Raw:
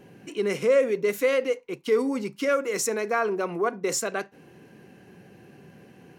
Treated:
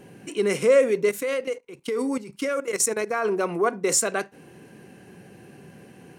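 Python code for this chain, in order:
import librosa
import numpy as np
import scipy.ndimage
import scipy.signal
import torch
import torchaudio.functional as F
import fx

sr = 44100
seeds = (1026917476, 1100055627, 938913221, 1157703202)

y = fx.level_steps(x, sr, step_db=14, at=(1.09, 3.25))
y = fx.peak_eq(y, sr, hz=8900.0, db=9.0, octaves=0.49)
y = y * librosa.db_to_amplitude(3.0)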